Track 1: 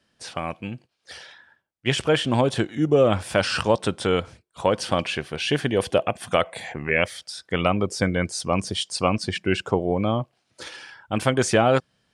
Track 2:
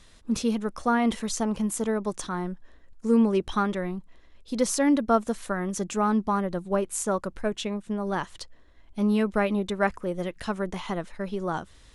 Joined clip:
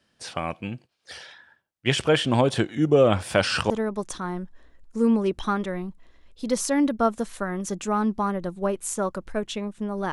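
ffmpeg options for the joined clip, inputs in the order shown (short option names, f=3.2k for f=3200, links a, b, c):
-filter_complex "[0:a]apad=whole_dur=10.12,atrim=end=10.12,atrim=end=3.702[a];[1:a]atrim=start=1.788:end=8.21[b];[a][b]acrossfade=d=0.004:c1=hsin:c2=hsin"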